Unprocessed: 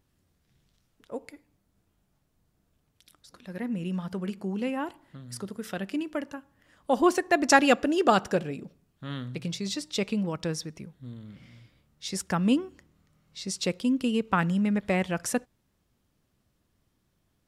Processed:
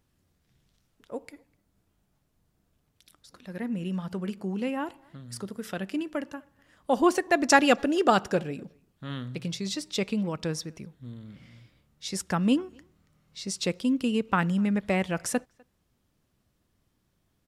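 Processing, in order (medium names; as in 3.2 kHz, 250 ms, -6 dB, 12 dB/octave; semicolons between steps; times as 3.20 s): wow and flutter 27 cents; speakerphone echo 250 ms, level -28 dB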